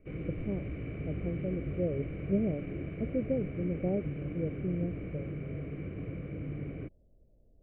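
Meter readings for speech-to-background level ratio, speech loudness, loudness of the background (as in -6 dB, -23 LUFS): 3.5 dB, -36.0 LUFS, -39.5 LUFS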